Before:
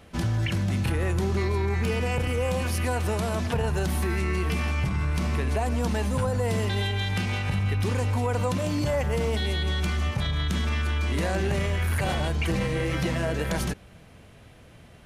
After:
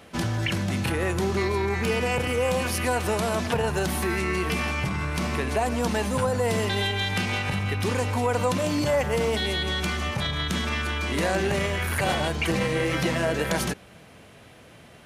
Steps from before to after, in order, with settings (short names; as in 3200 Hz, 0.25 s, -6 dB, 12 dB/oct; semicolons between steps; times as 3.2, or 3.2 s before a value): HPF 220 Hz 6 dB/oct; gain +4.5 dB